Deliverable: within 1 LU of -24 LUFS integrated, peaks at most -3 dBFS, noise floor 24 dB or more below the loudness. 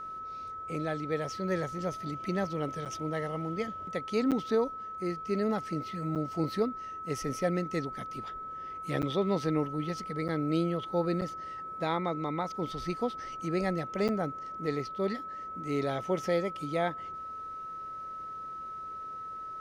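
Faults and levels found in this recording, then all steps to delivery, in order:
dropouts 7; longest dropout 7.8 ms; steady tone 1.3 kHz; tone level -38 dBFS; loudness -33.5 LUFS; peak level -17.0 dBFS; loudness target -24.0 LUFS
-> interpolate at 2.85/4.31/6.15/9.02/10.28/11.21/14.08 s, 7.8 ms; band-stop 1.3 kHz, Q 30; trim +9.5 dB

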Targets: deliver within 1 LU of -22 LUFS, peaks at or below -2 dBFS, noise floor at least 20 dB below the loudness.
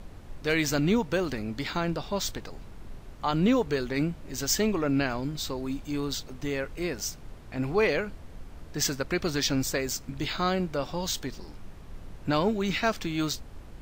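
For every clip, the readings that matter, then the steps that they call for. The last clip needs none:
noise floor -46 dBFS; noise floor target -49 dBFS; loudness -29.0 LUFS; peak level -14.0 dBFS; loudness target -22.0 LUFS
-> noise print and reduce 6 dB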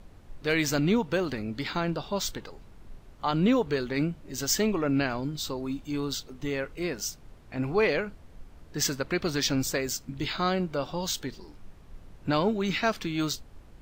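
noise floor -51 dBFS; loudness -29.0 LUFS; peak level -14.0 dBFS; loudness target -22.0 LUFS
-> trim +7 dB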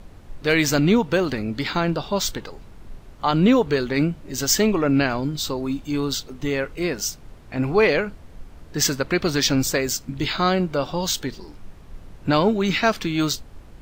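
loudness -22.0 LUFS; peak level -7.0 dBFS; noise floor -44 dBFS

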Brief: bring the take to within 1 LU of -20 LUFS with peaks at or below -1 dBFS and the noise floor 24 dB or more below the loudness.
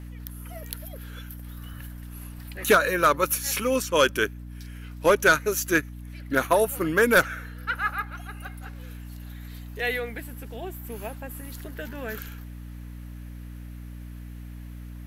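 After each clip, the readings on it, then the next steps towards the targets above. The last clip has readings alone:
hum 60 Hz; highest harmonic 300 Hz; hum level -37 dBFS; loudness -24.5 LUFS; peak level -10.0 dBFS; loudness target -20.0 LUFS
-> de-hum 60 Hz, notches 5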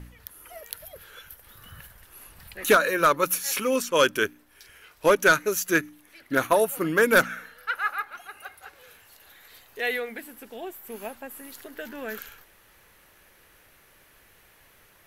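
hum not found; loudness -23.5 LUFS; peak level -9.5 dBFS; loudness target -20.0 LUFS
-> trim +3.5 dB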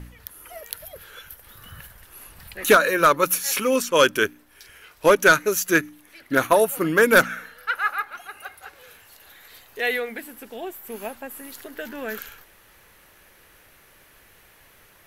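loudness -20.0 LUFS; peak level -6.0 dBFS; noise floor -54 dBFS

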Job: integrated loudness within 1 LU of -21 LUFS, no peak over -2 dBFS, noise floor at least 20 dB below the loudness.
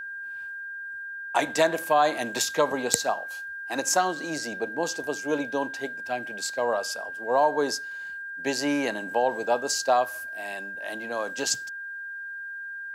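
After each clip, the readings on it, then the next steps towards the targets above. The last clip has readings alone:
steady tone 1.6 kHz; tone level -34 dBFS; loudness -27.5 LUFS; peak level -3.0 dBFS; loudness target -21.0 LUFS
-> band-stop 1.6 kHz, Q 30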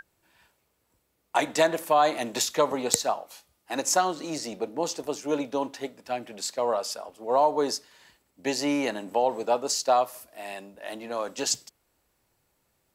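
steady tone not found; loudness -27.0 LUFS; peak level -3.0 dBFS; loudness target -21.0 LUFS
-> trim +6 dB; peak limiter -2 dBFS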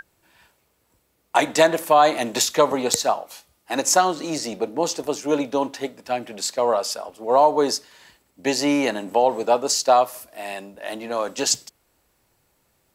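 loudness -21.5 LUFS; peak level -2.0 dBFS; noise floor -67 dBFS

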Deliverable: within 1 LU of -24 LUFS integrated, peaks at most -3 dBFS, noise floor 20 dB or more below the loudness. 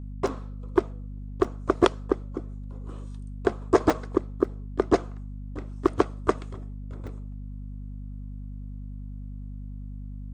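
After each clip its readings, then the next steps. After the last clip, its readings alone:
dropouts 6; longest dropout 4.2 ms; hum 50 Hz; highest harmonic 250 Hz; hum level -34 dBFS; loudness -28.5 LUFS; peak level -5.0 dBFS; loudness target -24.0 LUFS
-> interpolate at 0.27/1.44/3.90/4.44/5.87/7.07 s, 4.2 ms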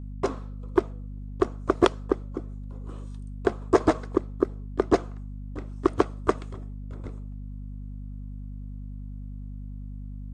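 dropouts 0; hum 50 Hz; highest harmonic 250 Hz; hum level -34 dBFS
-> hum notches 50/100/150/200/250 Hz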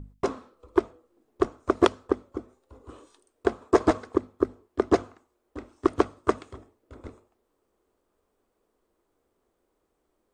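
hum not found; loudness -27.5 LUFS; peak level -5.0 dBFS; loudness target -24.0 LUFS
-> trim +3.5 dB; peak limiter -3 dBFS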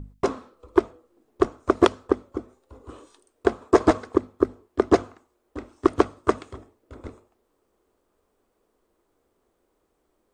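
loudness -24.0 LUFS; peak level -3.0 dBFS; noise floor -72 dBFS

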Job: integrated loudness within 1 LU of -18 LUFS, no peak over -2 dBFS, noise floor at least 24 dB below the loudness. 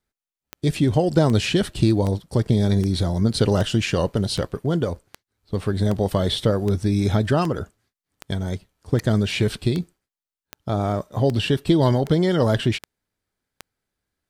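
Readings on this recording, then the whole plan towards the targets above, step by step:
clicks found 18; loudness -22.0 LUFS; peak level -5.0 dBFS; loudness target -18.0 LUFS
-> de-click; trim +4 dB; peak limiter -2 dBFS

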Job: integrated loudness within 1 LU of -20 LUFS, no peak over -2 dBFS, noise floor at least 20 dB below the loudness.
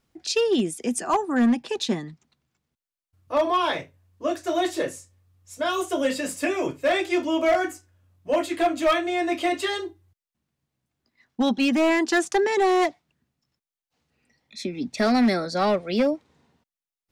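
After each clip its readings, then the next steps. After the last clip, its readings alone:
clipped samples 1.2%; clipping level -15.0 dBFS; loudness -24.0 LUFS; peak level -15.0 dBFS; loudness target -20.0 LUFS
-> clip repair -15 dBFS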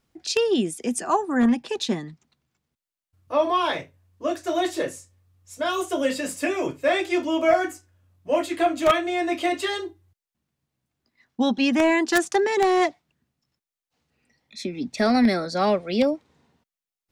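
clipped samples 0.0%; loudness -23.5 LUFS; peak level -6.0 dBFS; loudness target -20.0 LUFS
-> trim +3.5 dB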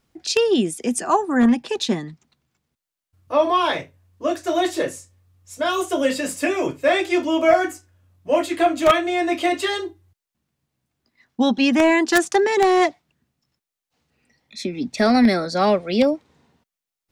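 loudness -20.0 LUFS; peak level -2.5 dBFS; noise floor -87 dBFS

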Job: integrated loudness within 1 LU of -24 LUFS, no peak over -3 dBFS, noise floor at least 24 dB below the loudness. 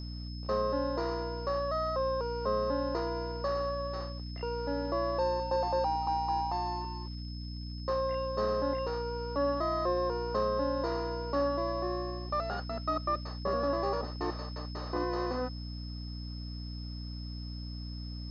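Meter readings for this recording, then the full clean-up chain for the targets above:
hum 60 Hz; highest harmonic 300 Hz; hum level -38 dBFS; steady tone 5.2 kHz; tone level -48 dBFS; loudness -33.5 LUFS; peak level -18.0 dBFS; loudness target -24.0 LUFS
-> hum notches 60/120/180/240/300 Hz; band-stop 5.2 kHz, Q 30; trim +9.5 dB

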